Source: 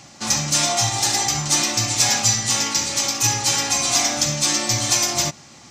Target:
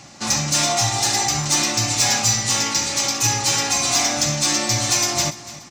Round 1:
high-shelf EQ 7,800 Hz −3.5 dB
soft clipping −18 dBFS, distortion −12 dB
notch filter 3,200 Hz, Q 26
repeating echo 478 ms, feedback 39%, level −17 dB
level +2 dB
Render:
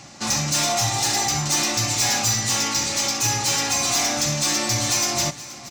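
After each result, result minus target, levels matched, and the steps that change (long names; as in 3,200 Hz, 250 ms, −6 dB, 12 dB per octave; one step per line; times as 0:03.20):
echo 189 ms late; soft clipping: distortion +9 dB
change: repeating echo 289 ms, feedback 39%, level −17 dB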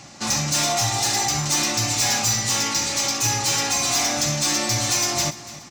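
soft clipping: distortion +9 dB
change: soft clipping −10.5 dBFS, distortion −21 dB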